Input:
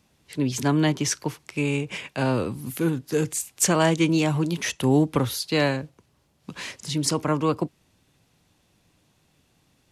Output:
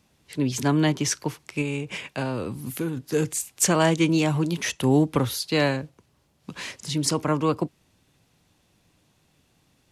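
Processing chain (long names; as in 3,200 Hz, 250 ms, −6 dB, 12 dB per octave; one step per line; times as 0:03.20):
0:01.61–0:02.97: downward compressor, threshold −24 dBFS, peak gain reduction 6.5 dB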